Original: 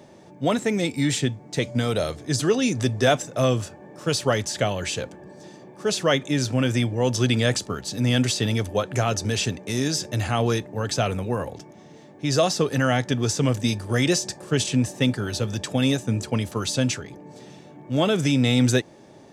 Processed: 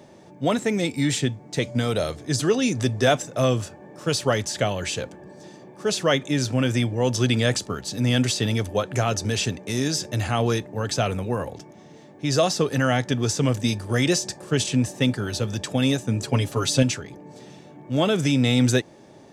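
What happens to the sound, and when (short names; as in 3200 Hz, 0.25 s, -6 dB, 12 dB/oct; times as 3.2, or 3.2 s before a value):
16.23–16.83 comb 7.3 ms, depth 100%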